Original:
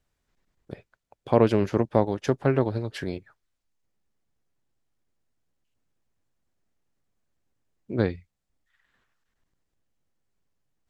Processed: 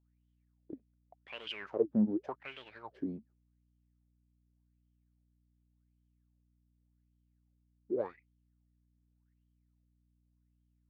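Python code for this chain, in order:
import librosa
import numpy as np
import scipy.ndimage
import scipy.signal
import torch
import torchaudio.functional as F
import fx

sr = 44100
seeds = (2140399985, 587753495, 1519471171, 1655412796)

y = fx.leveller(x, sr, passes=2)
y = fx.wah_lfo(y, sr, hz=0.87, low_hz=210.0, high_hz=3200.0, q=11.0)
y = fx.add_hum(y, sr, base_hz=60, snr_db=31)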